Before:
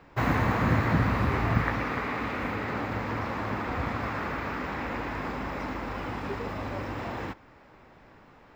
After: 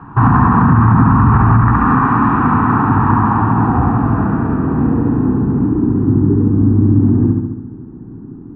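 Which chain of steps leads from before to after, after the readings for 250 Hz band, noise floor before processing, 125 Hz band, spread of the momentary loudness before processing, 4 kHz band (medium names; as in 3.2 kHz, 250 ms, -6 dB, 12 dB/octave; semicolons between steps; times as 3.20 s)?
+20.0 dB, -55 dBFS, +19.0 dB, 9 LU, no reading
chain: ten-band graphic EQ 125 Hz +10 dB, 250 Hz +8 dB, 2 kHz +11 dB, 8 kHz -8 dB; in parallel at -1 dB: compression, threshold -25 dBFS, peak gain reduction 15 dB; on the sum: static phaser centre 2.1 kHz, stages 6; low-pass sweep 1 kHz -> 340 Hz, 3.06–6.04 s; on a send: filtered feedback delay 70 ms, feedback 63%, low-pass 4.2 kHz, level -3.5 dB; on the sum: loudness maximiser +9 dB; trim -1 dB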